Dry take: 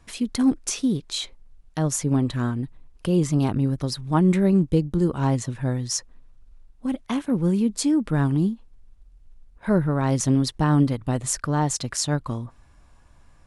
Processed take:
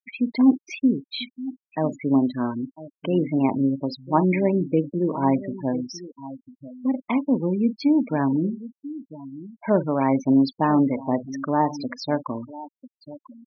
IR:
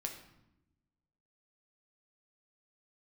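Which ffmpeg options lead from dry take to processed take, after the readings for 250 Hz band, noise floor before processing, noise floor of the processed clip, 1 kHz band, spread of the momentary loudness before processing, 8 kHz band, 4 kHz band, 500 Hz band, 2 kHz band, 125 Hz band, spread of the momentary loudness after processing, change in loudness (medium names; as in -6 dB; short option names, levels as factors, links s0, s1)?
+1.5 dB, -54 dBFS, under -85 dBFS, +4.5 dB, 10 LU, under -20 dB, -5.5 dB, +2.5 dB, +0.5 dB, -7.0 dB, 17 LU, 0.0 dB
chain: -filter_complex "[0:a]highpass=230,equalizer=f=260:t=q:w=4:g=6,equalizer=f=620:t=q:w=4:g=6,equalizer=f=930:t=q:w=4:g=6,equalizer=f=1400:t=q:w=4:g=-4,equalizer=f=2300:t=q:w=4:g=10,equalizer=f=3800:t=q:w=4:g=-3,lowpass=f=4700:w=0.5412,lowpass=f=4700:w=1.3066,asplit=2[s0][s1];[s1]adelay=44,volume=0.237[s2];[s0][s2]amix=inputs=2:normalize=0,aecho=1:1:997:0.168,acompressor=mode=upward:threshold=0.0224:ratio=2.5,afftfilt=real='re*gte(hypot(re,im),0.0501)':imag='im*gte(hypot(re,im),0.0501)':win_size=1024:overlap=0.75"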